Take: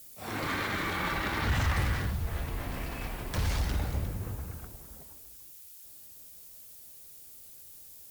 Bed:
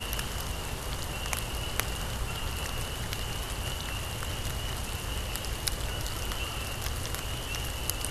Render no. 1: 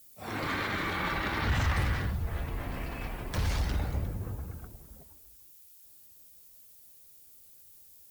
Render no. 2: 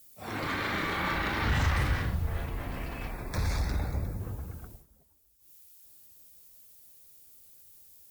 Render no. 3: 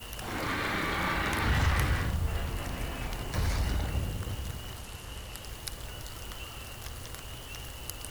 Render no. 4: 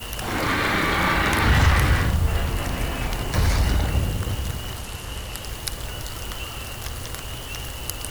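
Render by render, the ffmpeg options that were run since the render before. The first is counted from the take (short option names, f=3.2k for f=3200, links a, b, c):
-af "afftdn=nr=7:nf=-50"
-filter_complex "[0:a]asettb=1/sr,asplit=3[a][b][c];[a]atrim=end=0.614[d];[b]atrim=start=0.61:end=2.46,asetpts=PTS-STARTPTS,afade=t=in:d=0.004:c=qsin,afade=t=out:st=1.846:d=0.004:c=qsin,asplit=2[e][f];[f]adelay=37,volume=-5dB[g];[e][g]amix=inputs=2:normalize=0,atrim=end_sample=81585[h];[c]atrim=start=2.456[i];[d][h]acrossfade=d=0.004:c1=hsin:c2=qsin[j];[j][i]acrossfade=d=0.004:c1=qsin:c2=hsin,asettb=1/sr,asplit=3[k][l][m];[k]atrim=end=3.114[n];[l]atrim=start=3.11:end=4.2,asetpts=PTS-STARTPTS,afade=t=in:d=0.004:c=qsin,afade=t=out:st=1.086:d=0.004:c=qsin,asuperstop=centerf=3000:order=4:qfactor=3.3[o];[m]atrim=start=4.196[p];[n][o]acrossfade=d=0.004:c1=hsin:c2=qsin[q];[q][p]acrossfade=d=0.004:c1=qsin:c2=hsin,asplit=3[r][s][t];[r]atrim=end=4.86,asetpts=PTS-STARTPTS,afade=t=out:st=4.73:d=0.13:silence=0.251189[u];[s]atrim=start=4.86:end=5.39,asetpts=PTS-STARTPTS,volume=-12dB[v];[t]atrim=start=5.39,asetpts=PTS-STARTPTS,afade=t=in:d=0.13:silence=0.251189[w];[u][v][w]concat=n=3:v=0:a=1"
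-filter_complex "[1:a]volume=-8dB[a];[0:a][a]amix=inputs=2:normalize=0"
-af "volume=9.5dB,alimiter=limit=-3dB:level=0:latency=1"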